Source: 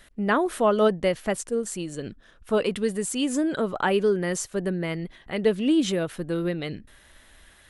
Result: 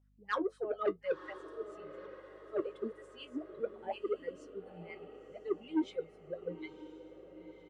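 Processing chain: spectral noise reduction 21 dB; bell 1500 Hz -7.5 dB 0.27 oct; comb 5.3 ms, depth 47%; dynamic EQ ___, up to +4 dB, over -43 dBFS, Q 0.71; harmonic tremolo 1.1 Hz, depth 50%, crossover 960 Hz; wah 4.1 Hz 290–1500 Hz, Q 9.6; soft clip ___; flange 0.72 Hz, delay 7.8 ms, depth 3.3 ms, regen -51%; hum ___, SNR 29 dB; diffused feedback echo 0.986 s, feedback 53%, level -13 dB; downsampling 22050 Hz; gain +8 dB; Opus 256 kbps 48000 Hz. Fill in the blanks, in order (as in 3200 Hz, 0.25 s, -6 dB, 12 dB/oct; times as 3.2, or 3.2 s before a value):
3400 Hz, -29.5 dBFS, 50 Hz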